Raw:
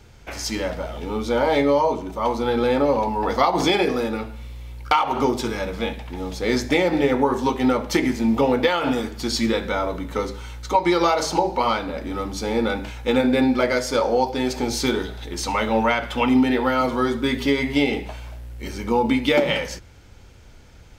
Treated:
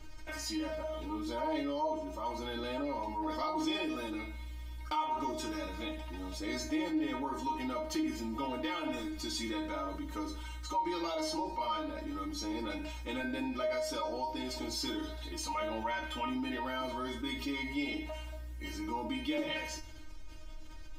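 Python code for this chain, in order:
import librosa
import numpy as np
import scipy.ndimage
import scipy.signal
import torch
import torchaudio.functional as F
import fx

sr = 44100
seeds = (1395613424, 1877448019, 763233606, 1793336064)

y = fx.low_shelf(x, sr, hz=60.0, db=11.5)
y = fx.comb_fb(y, sr, f0_hz=310.0, decay_s=0.2, harmonics='all', damping=0.0, mix_pct=100)
y = fx.env_flatten(y, sr, amount_pct=50)
y = y * 10.0 ** (-7.5 / 20.0)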